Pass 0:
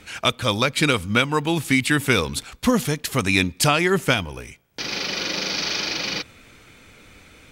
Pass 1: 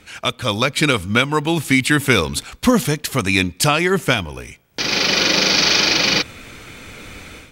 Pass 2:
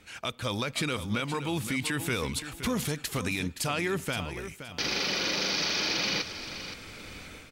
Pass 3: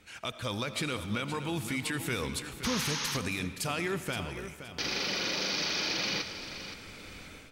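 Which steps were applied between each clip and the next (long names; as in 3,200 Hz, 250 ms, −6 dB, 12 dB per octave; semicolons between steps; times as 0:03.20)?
automatic gain control gain up to 13 dB; level −1 dB
brickwall limiter −12 dBFS, peak gain reduction 10 dB; repeating echo 521 ms, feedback 26%, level −11 dB; level −8.5 dB
sound drawn into the spectrogram noise, 0:02.64–0:03.17, 810–6,700 Hz −32 dBFS; comb and all-pass reverb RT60 1.9 s, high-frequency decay 0.65×, pre-delay 45 ms, DRR 11.5 dB; level −3 dB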